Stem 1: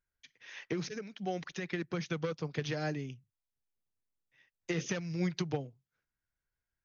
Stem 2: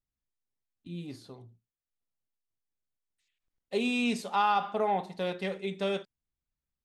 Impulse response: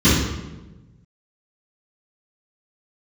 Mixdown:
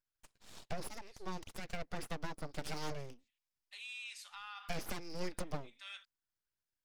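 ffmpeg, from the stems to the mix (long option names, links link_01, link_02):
-filter_complex "[0:a]equalizer=frequency=315:width_type=o:width=0.33:gain=6,equalizer=frequency=1000:width_type=o:width=0.33:gain=7,equalizer=frequency=5000:width_type=o:width=0.33:gain=11,aeval=exprs='abs(val(0))':channel_layout=same,volume=-5.5dB,asplit=2[link_01][link_02];[1:a]highpass=frequency=1400:width=0.5412,highpass=frequency=1400:width=1.3066,alimiter=level_in=9dB:limit=-24dB:level=0:latency=1:release=166,volume=-9dB,volume=-5.5dB[link_03];[link_02]apad=whole_len=301848[link_04];[link_03][link_04]sidechaincompress=threshold=-54dB:ratio=8:attack=16:release=178[link_05];[link_01][link_05]amix=inputs=2:normalize=0"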